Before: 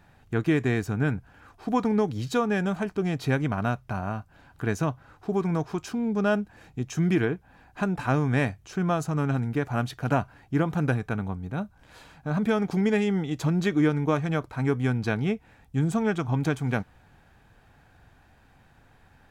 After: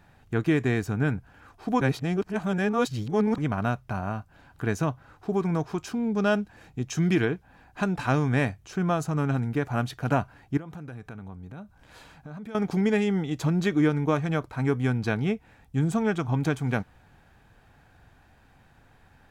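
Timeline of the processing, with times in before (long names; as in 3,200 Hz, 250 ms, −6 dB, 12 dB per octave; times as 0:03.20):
0:01.81–0:03.38: reverse
0:06.12–0:08.29: dynamic equaliser 4,400 Hz, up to +5 dB, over −48 dBFS, Q 0.74
0:10.57–0:12.55: downward compressor 4 to 1, threshold −39 dBFS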